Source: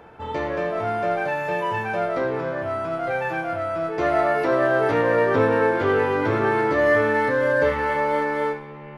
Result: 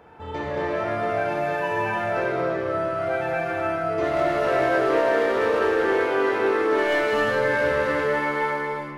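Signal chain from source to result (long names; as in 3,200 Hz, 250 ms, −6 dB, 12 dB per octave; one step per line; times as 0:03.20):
0:04.69–0:07.13: high-pass filter 330 Hz 12 dB per octave
gain into a clipping stage and back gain 15.5 dB
reverb whose tail is shaped and stops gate 450 ms flat, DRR −4.5 dB
level −5 dB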